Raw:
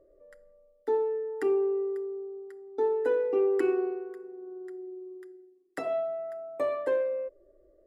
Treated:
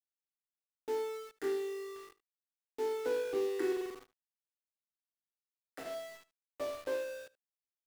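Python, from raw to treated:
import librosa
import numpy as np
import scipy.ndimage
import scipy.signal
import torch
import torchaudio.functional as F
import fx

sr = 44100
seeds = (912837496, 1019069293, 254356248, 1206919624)

p1 = fx.spec_trails(x, sr, decay_s=0.65)
p2 = np.where(np.abs(p1) >= 10.0 ** (-32.0 / 20.0), p1, 0.0)
p3 = p2 + fx.echo_single(p2, sr, ms=75, db=-18.0, dry=0)
p4 = fx.upward_expand(p3, sr, threshold_db=-44.0, expansion=1.5)
y = p4 * 10.0 ** (-7.5 / 20.0)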